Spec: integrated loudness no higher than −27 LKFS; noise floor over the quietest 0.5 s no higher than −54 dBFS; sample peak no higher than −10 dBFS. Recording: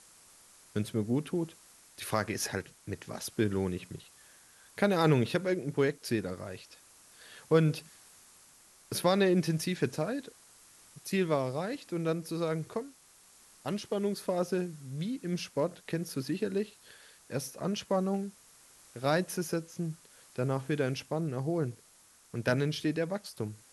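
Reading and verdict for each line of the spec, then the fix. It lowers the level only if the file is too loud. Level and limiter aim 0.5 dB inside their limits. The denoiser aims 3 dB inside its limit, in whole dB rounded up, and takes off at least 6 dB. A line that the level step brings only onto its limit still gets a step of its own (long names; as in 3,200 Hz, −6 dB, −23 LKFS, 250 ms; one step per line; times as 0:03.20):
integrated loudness −32.5 LKFS: in spec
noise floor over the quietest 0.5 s −61 dBFS: in spec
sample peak −14.0 dBFS: in spec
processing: no processing needed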